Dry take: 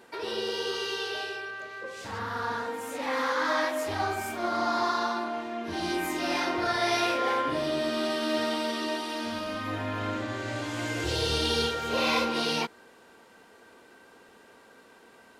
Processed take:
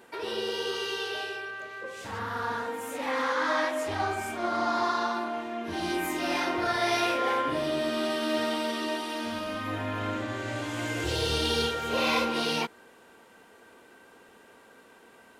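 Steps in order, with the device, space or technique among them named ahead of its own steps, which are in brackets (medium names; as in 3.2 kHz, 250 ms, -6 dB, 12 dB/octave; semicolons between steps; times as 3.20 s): exciter from parts (in parallel at -9 dB: high-pass 3.4 kHz 24 dB/octave + saturation -32.5 dBFS, distortion -13 dB + high-pass 2.9 kHz 12 dB/octave); 3.11–5.14 s: on the sum: low-pass 9.8 kHz 12 dB/octave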